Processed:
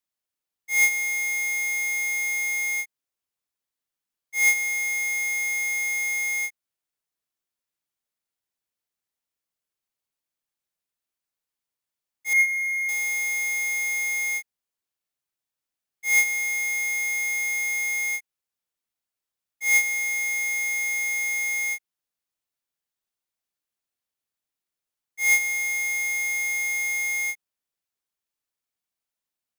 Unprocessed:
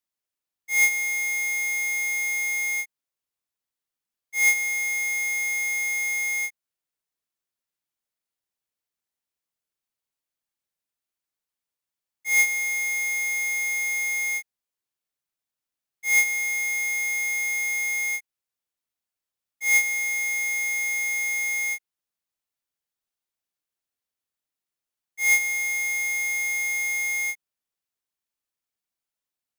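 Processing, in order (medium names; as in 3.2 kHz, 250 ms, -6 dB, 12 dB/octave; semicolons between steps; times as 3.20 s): 12.33–12.89 s: resonances exaggerated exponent 2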